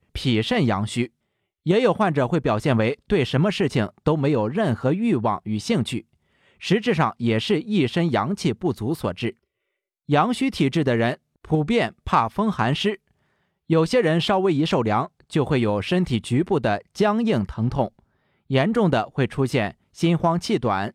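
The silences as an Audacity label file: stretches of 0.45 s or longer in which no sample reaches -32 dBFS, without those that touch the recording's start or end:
1.060000	1.660000	silence
6.000000	6.630000	silence
9.300000	10.090000	silence
12.950000	13.700000	silence
17.880000	18.500000	silence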